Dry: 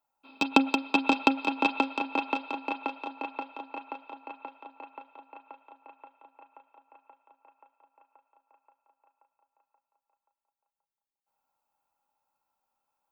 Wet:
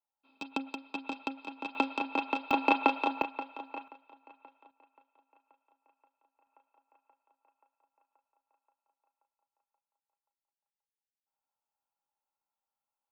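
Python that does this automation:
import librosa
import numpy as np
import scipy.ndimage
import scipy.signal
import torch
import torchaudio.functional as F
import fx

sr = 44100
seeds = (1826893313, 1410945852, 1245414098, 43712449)

y = fx.gain(x, sr, db=fx.steps((0.0, -14.0), (1.75, -2.5), (2.51, 7.5), (3.22, -2.0), (3.88, -13.0), (4.71, -19.0), (6.47, -12.0)))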